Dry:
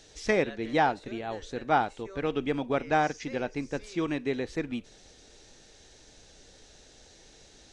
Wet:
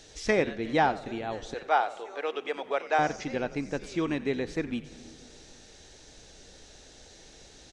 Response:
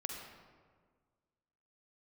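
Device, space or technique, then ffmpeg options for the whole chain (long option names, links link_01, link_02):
ducked reverb: -filter_complex "[0:a]asettb=1/sr,asplit=3[link_01][link_02][link_03];[link_01]atrim=end=1.544[link_04];[link_02]atrim=start=1.54:end=2.99,asetpts=PTS-STARTPTS,afade=type=in:duration=0.004:curve=qsin,afade=type=out:start_time=1.446:duration=0.004:curve=qsin,highpass=frequency=450:width=0.5412,highpass=frequency=450:width=1.3066[link_05];[link_03]atrim=start=2.986[link_06];[link_04][link_05]acrossfade=duration=0.004:curve1=hsin:curve2=qsin[link_07];[link_07][link_06]acrossfade=duration=0.004:curve1=qsin:curve2=hsin,asplit=4[link_08][link_09][link_10][link_11];[link_09]adelay=89,afreqshift=-91,volume=-17dB[link_12];[link_10]adelay=178,afreqshift=-182,volume=-27.5dB[link_13];[link_11]adelay=267,afreqshift=-273,volume=-37.9dB[link_14];[link_08][link_12][link_13][link_14]amix=inputs=4:normalize=0,asplit=3[link_15][link_16][link_17];[1:a]atrim=start_sample=2205[link_18];[link_16][link_18]afir=irnorm=-1:irlink=0[link_19];[link_17]apad=whole_len=352354[link_20];[link_19][link_20]sidechaincompress=threshold=-38dB:ratio=8:attack=5.4:release=332,volume=-6.5dB[link_21];[link_15][link_21]amix=inputs=2:normalize=0"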